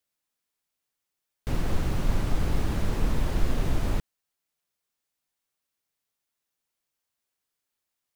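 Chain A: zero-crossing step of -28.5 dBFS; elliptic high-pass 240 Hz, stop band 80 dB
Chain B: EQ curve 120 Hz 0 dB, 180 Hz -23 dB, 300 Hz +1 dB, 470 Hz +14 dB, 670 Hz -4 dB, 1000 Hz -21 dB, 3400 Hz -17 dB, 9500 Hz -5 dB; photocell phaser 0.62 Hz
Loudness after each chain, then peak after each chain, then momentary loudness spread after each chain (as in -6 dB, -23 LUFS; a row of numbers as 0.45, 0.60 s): -33.5, -33.5 LUFS; -19.5, -12.0 dBFS; 1, 5 LU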